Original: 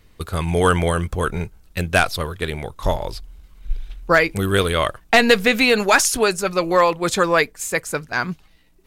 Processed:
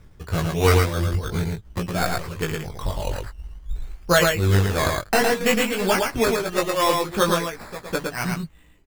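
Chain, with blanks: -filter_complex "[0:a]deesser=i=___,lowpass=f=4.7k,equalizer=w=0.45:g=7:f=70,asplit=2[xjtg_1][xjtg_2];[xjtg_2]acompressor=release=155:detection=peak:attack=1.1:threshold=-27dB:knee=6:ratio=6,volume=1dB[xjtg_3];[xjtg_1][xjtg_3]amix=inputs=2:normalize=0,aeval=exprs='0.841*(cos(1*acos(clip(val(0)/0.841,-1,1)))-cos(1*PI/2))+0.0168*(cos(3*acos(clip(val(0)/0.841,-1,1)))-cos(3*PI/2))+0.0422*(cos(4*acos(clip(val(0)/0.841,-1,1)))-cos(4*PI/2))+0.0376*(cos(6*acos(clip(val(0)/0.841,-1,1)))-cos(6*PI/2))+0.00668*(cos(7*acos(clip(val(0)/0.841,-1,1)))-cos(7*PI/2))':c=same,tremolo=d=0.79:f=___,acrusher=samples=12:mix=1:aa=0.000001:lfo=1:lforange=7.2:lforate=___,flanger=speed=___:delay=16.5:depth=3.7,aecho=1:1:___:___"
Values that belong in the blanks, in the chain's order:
0.45, 2.9, 0.67, 0.51, 112, 0.668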